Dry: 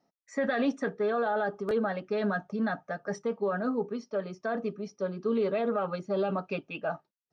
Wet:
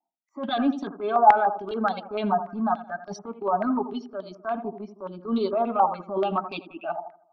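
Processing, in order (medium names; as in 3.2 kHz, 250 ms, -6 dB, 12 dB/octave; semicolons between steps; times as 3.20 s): expander on every frequency bin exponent 1.5; bass shelf 160 Hz -7.5 dB; in parallel at -0.5 dB: peak limiter -29.5 dBFS, peak gain reduction 8.5 dB; on the sum: transient shaper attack -10 dB, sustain -6 dB; static phaser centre 500 Hz, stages 6; on a send: tape echo 82 ms, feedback 51%, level -9.5 dB, low-pass 1.2 kHz; on the sum: step-sequenced low-pass 6.9 Hz 870–3900 Hz; trim +7.5 dB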